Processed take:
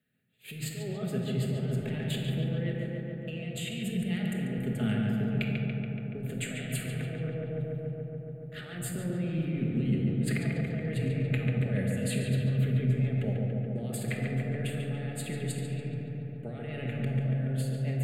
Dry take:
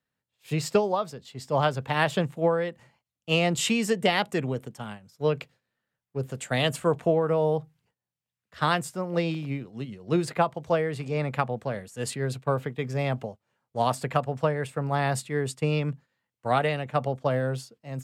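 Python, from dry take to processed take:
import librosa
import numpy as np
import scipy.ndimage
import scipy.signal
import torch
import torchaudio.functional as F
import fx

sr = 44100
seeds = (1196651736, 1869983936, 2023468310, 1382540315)

y = scipy.signal.sosfilt(scipy.signal.butter(2, 120.0, 'highpass', fs=sr, output='sos'), x)
y = fx.low_shelf(y, sr, hz=160.0, db=10.0)
y = fx.over_compress(y, sr, threshold_db=-34.0, ratio=-1.0)
y = fx.fixed_phaser(y, sr, hz=2400.0, stages=4)
y = fx.echo_filtered(y, sr, ms=142, feedback_pct=84, hz=3100.0, wet_db=-3.5)
y = fx.room_shoebox(y, sr, seeds[0], volume_m3=1200.0, walls='mixed', distance_m=1.4)
y = y * 10.0 ** (-3.5 / 20.0)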